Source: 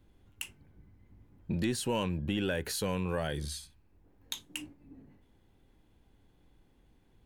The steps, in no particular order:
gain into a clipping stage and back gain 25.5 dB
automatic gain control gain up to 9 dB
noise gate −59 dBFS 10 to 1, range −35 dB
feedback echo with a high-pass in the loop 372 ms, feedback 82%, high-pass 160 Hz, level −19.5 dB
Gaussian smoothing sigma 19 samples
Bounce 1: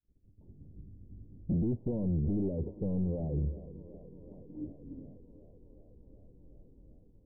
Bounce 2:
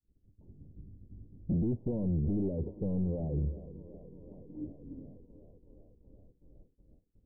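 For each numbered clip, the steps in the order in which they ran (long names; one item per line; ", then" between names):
automatic gain control, then feedback echo with a high-pass in the loop, then gain into a clipping stage and back, then Gaussian smoothing, then noise gate
feedback echo with a high-pass in the loop, then noise gate, then automatic gain control, then gain into a clipping stage and back, then Gaussian smoothing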